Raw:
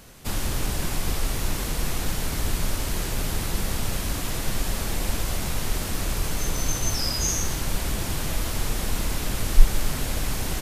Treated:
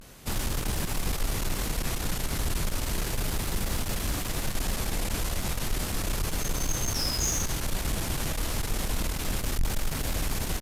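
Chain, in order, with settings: vibrato 0.33 Hz 45 cents; valve stage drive 20 dB, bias 0.35

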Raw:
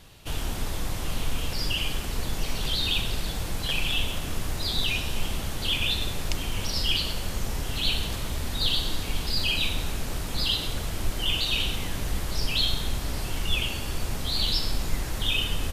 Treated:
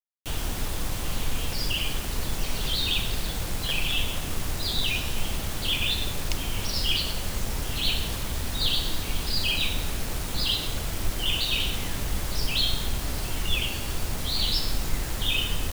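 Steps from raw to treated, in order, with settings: bit crusher 6-bit

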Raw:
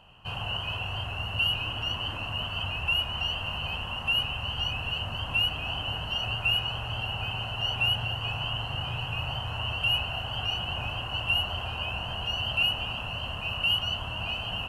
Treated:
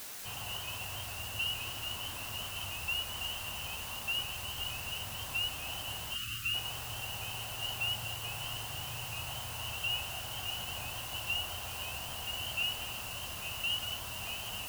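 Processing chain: word length cut 6-bit, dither triangular; bass shelf 220 Hz -3.5 dB; time-frequency box 6.15–6.54 s, 350–1100 Hz -24 dB; trim -8.5 dB

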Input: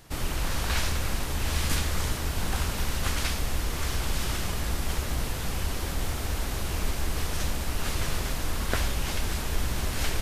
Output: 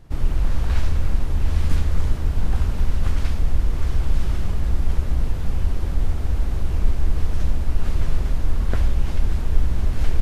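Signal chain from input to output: tilt EQ -3 dB/octave; trim -3.5 dB

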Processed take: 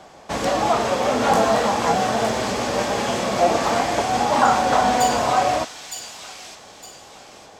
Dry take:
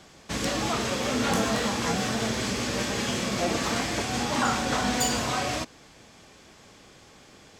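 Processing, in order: peaking EQ 740 Hz +14 dB 1.5 oct; on a send: feedback echo behind a high-pass 912 ms, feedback 35%, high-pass 3.1 kHz, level -5 dB

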